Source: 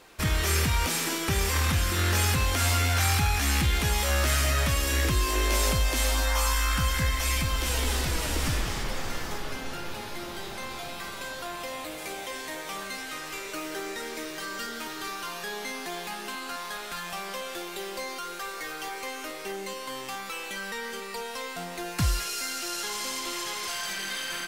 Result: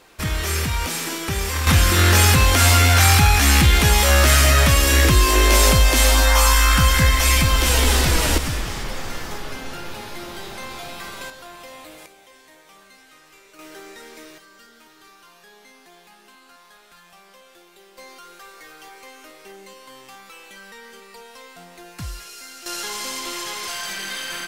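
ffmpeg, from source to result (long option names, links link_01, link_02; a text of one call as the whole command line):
ffmpeg -i in.wav -af "asetnsamples=nb_out_samples=441:pad=0,asendcmd='1.67 volume volume 10.5dB;8.38 volume volume 3dB;11.3 volume volume -4dB;12.06 volume volume -13.5dB;13.59 volume volume -5.5dB;14.38 volume volume -14dB;17.98 volume volume -7dB;22.66 volume volume 3.5dB',volume=2dB" out.wav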